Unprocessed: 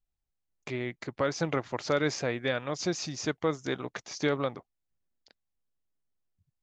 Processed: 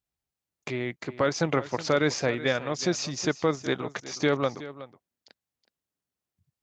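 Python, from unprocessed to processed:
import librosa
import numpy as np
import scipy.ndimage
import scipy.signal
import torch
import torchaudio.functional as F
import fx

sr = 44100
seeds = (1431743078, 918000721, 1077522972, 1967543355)

p1 = scipy.signal.sosfilt(scipy.signal.butter(2, 84.0, 'highpass', fs=sr, output='sos'), x)
p2 = fx.level_steps(p1, sr, step_db=10)
p3 = p1 + F.gain(torch.from_numpy(p2), -1.0).numpy()
y = p3 + 10.0 ** (-15.5 / 20.0) * np.pad(p3, (int(370 * sr / 1000.0), 0))[:len(p3)]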